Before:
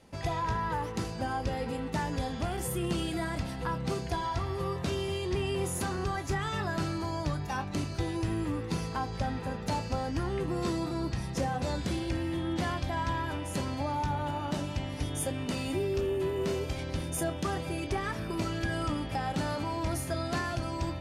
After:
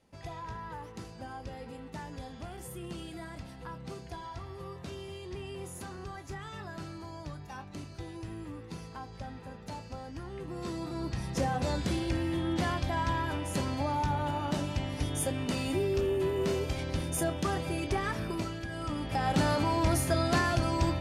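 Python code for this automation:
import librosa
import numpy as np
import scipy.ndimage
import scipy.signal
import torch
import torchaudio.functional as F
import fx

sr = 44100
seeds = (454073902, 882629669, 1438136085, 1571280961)

y = fx.gain(x, sr, db=fx.line((10.28, -10.0), (11.43, 1.0), (18.25, 1.0), (18.67, -7.5), (19.35, 5.0)))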